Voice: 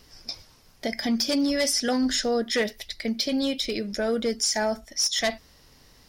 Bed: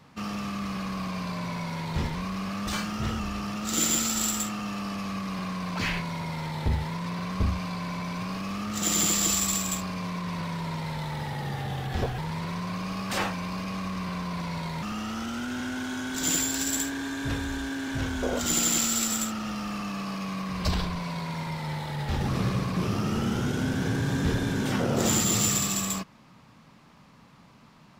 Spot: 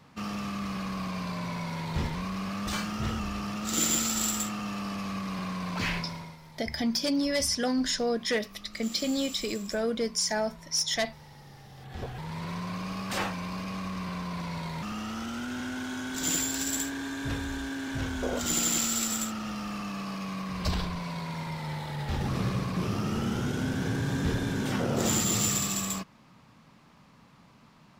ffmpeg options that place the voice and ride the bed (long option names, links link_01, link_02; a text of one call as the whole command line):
ffmpeg -i stem1.wav -i stem2.wav -filter_complex "[0:a]adelay=5750,volume=-3.5dB[link_01];[1:a]volume=14dB,afade=type=out:start_time=5.93:duration=0.45:silence=0.149624,afade=type=in:start_time=11.74:duration=0.78:silence=0.16788[link_02];[link_01][link_02]amix=inputs=2:normalize=0" out.wav